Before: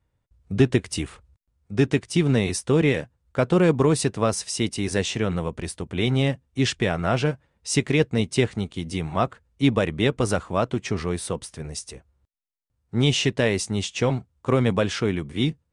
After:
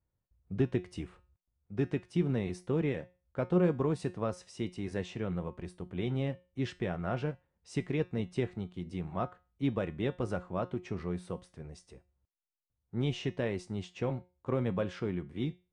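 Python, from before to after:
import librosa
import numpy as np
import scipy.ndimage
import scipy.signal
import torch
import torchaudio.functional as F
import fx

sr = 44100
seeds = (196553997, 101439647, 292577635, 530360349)

y = fx.lowpass(x, sr, hz=1300.0, slope=6)
y = fx.comb_fb(y, sr, f0_hz=180.0, decay_s=0.32, harmonics='all', damping=0.0, mix_pct=60)
y = y * 10.0 ** (-4.0 / 20.0)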